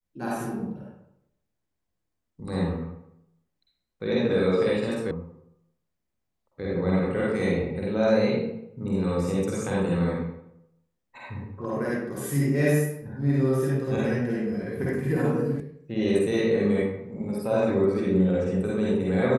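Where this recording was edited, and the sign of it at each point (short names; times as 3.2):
5.11 sound cut off
15.6 sound cut off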